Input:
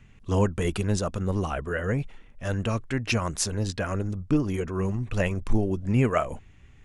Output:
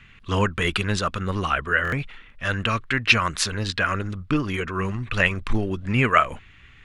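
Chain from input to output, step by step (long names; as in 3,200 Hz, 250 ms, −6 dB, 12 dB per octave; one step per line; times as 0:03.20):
flat-topped bell 2,200 Hz +12.5 dB 2.3 octaves
buffer that repeats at 0:01.83, samples 1,024, times 3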